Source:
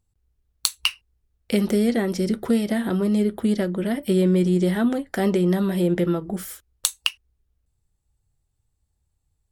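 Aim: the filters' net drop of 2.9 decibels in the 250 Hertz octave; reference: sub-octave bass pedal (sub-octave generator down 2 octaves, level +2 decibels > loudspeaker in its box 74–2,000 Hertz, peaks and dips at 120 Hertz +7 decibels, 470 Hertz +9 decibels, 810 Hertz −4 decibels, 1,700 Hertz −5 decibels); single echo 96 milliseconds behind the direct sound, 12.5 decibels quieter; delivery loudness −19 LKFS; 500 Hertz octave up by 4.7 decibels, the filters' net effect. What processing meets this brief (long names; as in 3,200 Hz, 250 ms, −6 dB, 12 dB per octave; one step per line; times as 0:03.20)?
parametric band 250 Hz −6.5 dB
parametric band 500 Hz +3.5 dB
single-tap delay 96 ms −12.5 dB
sub-octave generator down 2 octaves, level +2 dB
loudspeaker in its box 74–2,000 Hz, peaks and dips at 120 Hz +7 dB, 470 Hz +9 dB, 810 Hz −4 dB, 1,700 Hz −5 dB
level +2 dB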